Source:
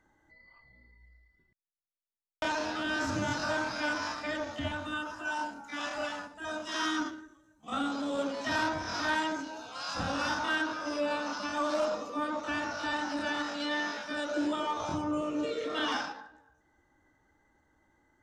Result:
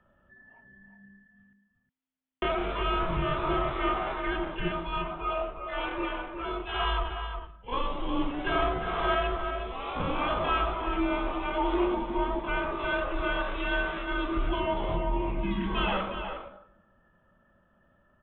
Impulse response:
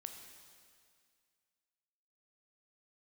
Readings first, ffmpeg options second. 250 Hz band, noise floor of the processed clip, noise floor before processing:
+2.0 dB, -67 dBFS, -73 dBFS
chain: -filter_complex "[0:a]aresample=8000,aresample=44100,afreqshift=-260,asplit=2[s0][s1];[s1]adelay=361.5,volume=0.447,highshelf=f=4000:g=-8.13[s2];[s0][s2]amix=inputs=2:normalize=0,volume=1.5"

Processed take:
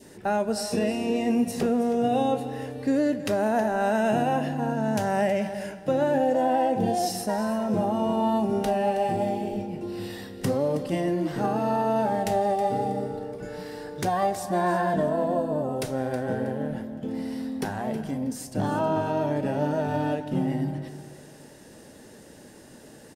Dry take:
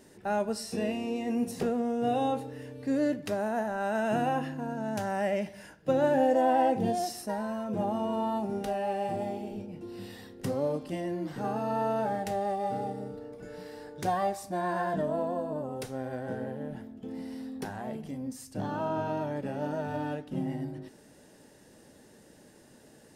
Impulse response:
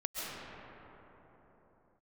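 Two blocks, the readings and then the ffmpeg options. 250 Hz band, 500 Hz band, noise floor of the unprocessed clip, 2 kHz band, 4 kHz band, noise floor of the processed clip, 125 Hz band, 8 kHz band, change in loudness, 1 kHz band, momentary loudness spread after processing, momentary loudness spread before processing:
+6.0 dB, +5.0 dB, -56 dBFS, +5.0 dB, +6.5 dB, -48 dBFS, +7.0 dB, +7.0 dB, +5.0 dB, +4.5 dB, 9 LU, 12 LU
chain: -filter_complex "[0:a]adynamicequalizer=threshold=0.00631:dfrequency=1300:dqfactor=1.5:tfrequency=1300:tqfactor=1.5:attack=5:release=100:ratio=0.375:range=2.5:mode=cutabove:tftype=bell,alimiter=limit=0.0708:level=0:latency=1:release=210,aecho=1:1:320|640|960:0.2|0.0559|0.0156,asplit=2[s0][s1];[1:a]atrim=start_sample=2205,afade=t=out:st=0.4:d=0.01,atrim=end_sample=18081,adelay=28[s2];[s1][s2]afir=irnorm=-1:irlink=0,volume=0.119[s3];[s0][s3]amix=inputs=2:normalize=0,volume=2.37"

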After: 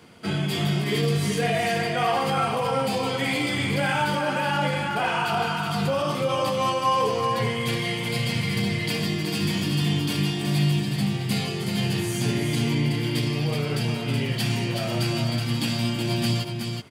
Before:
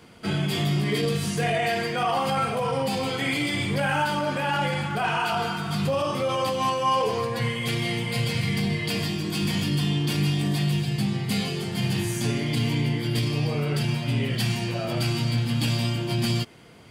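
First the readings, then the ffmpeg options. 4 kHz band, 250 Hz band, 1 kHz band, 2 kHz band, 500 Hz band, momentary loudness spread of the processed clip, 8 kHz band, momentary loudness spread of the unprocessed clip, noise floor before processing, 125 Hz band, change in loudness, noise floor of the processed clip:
+1.0 dB, +1.0 dB, +1.0 dB, +1.0 dB, +1.0 dB, 3 LU, +1.0 dB, 3 LU, -30 dBFS, 0.0 dB, +1.0 dB, -29 dBFS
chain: -filter_complex "[0:a]highpass=76,asplit=2[s0][s1];[s1]aecho=0:1:372:0.531[s2];[s0][s2]amix=inputs=2:normalize=0"

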